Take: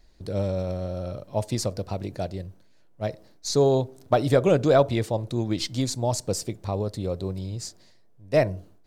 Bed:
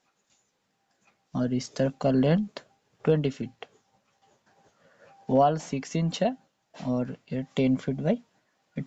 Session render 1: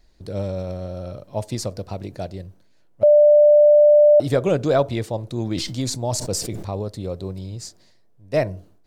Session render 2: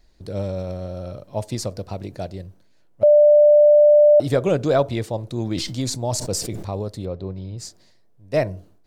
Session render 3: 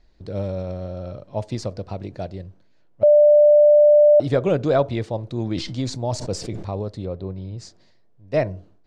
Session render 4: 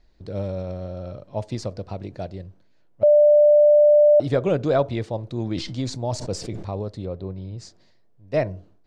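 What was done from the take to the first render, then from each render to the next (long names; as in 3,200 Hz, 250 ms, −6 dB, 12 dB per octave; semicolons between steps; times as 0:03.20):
0:03.03–0:04.20: beep over 593 Hz −8.5 dBFS; 0:05.38–0:06.80: level that may fall only so fast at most 45 dB per second
0:07.05–0:07.58: high-frequency loss of the air 200 metres
high-frequency loss of the air 110 metres
level −1.5 dB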